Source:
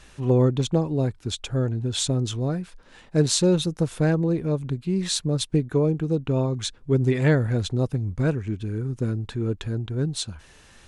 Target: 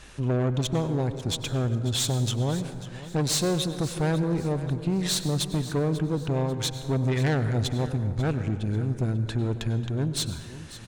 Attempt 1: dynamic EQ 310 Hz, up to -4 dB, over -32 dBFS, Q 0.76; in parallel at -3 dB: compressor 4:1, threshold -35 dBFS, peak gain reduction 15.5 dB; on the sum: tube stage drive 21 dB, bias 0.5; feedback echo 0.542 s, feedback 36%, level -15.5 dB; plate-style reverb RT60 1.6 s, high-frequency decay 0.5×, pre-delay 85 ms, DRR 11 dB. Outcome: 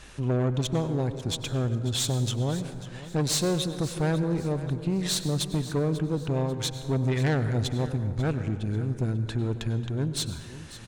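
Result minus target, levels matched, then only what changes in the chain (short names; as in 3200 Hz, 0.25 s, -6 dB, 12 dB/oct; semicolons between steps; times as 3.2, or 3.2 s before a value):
compressor: peak gain reduction +7.5 dB
change: compressor 4:1, threshold -25 dBFS, peak gain reduction 8 dB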